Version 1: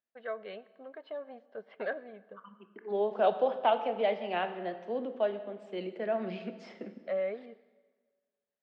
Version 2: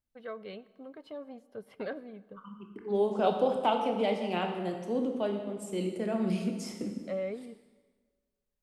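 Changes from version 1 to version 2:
second voice: send +7.0 dB
master: remove loudspeaker in its box 280–3,800 Hz, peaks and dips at 290 Hz −6 dB, 660 Hz +7 dB, 1,700 Hz +8 dB

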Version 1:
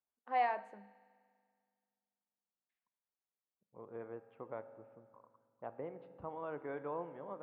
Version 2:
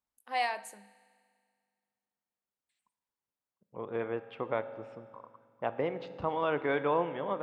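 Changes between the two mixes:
second voice +12.0 dB
master: remove low-pass filter 1,400 Hz 12 dB per octave

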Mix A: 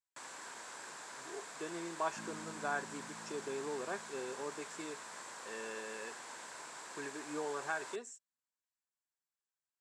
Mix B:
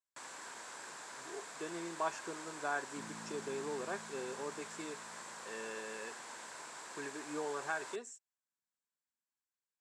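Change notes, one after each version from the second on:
second sound: entry +0.80 s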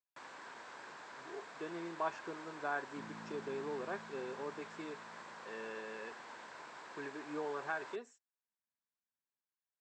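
master: add high-frequency loss of the air 170 metres

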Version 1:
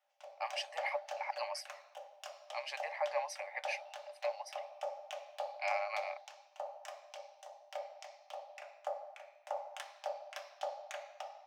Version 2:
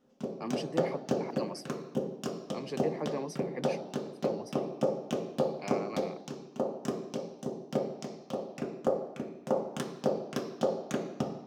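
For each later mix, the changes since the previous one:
speech −9.0 dB
master: remove Chebyshev high-pass with heavy ripple 570 Hz, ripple 9 dB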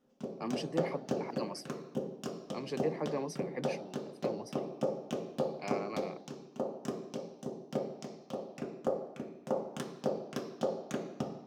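background −4.0 dB

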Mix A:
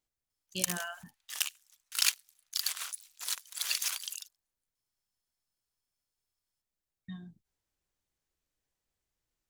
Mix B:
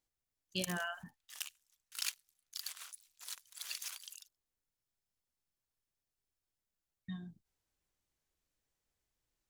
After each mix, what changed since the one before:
background −11.0 dB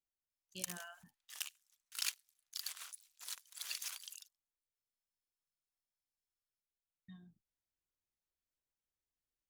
speech −12.0 dB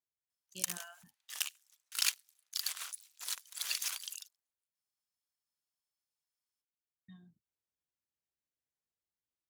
speech: add high-pass filter 77 Hz
background +7.0 dB

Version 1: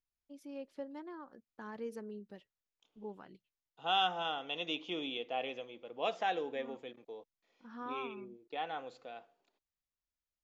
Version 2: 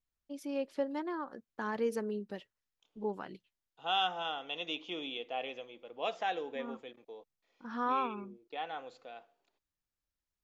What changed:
first voice +11.0 dB
master: add low-shelf EQ 280 Hz −5 dB

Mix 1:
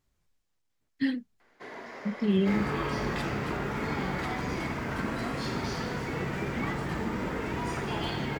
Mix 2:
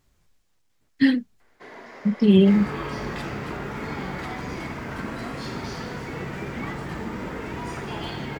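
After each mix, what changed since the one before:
speech +10.0 dB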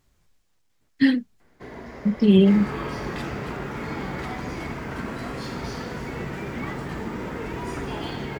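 first sound: remove meter weighting curve A

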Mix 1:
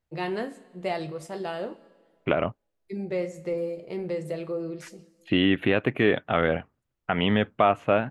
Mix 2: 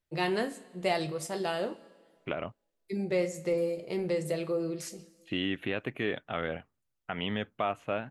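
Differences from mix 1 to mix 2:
second voice −11.0 dB
master: add high-shelf EQ 3,700 Hz +10 dB

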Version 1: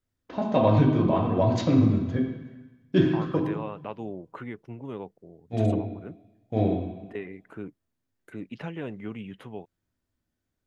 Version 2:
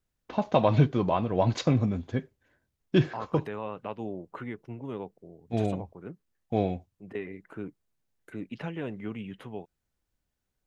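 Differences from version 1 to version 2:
first voice +3.5 dB
reverb: off

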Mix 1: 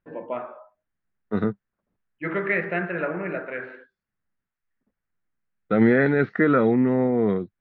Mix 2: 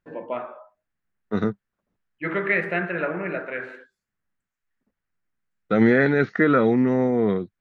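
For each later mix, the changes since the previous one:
master: remove high-frequency loss of the air 240 metres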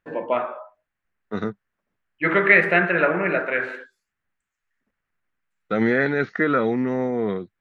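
first voice +8.5 dB
master: add low-shelf EQ 410 Hz −5.5 dB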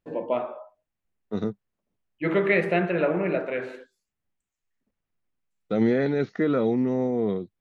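master: add parametric band 1,600 Hz −14 dB 1.3 octaves

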